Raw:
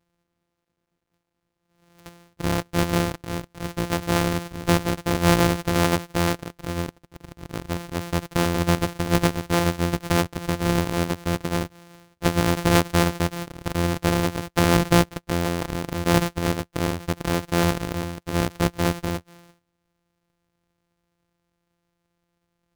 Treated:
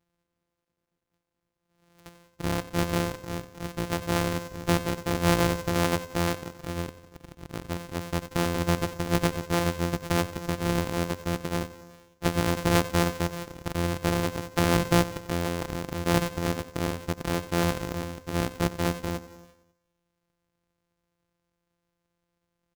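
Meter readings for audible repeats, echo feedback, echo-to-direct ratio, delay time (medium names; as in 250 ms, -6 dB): 5, 59%, -14.0 dB, 91 ms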